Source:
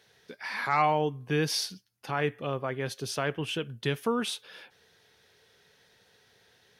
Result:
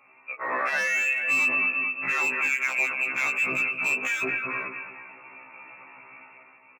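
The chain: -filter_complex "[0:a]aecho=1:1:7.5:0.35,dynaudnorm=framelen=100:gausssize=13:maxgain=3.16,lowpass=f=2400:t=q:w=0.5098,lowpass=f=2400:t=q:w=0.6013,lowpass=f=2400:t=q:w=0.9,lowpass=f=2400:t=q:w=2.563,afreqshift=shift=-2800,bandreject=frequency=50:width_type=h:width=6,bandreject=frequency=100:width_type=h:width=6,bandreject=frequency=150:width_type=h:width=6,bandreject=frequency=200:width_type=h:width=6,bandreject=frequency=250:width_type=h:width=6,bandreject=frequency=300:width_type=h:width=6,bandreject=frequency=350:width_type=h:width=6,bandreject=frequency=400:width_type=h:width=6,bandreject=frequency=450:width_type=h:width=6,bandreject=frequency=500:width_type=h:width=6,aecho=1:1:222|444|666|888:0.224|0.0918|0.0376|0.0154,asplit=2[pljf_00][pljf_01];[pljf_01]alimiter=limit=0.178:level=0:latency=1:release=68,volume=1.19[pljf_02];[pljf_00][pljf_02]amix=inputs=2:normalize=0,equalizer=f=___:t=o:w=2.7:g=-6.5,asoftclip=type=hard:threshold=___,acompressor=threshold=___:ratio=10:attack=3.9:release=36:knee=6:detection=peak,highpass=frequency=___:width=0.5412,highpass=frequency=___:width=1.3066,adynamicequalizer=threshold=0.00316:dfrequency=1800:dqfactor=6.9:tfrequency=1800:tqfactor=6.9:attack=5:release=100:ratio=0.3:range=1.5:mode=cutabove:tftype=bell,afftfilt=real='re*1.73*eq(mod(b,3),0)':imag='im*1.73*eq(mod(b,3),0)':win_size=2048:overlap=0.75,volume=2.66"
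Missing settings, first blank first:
1100, 0.178, 0.0316, 150, 150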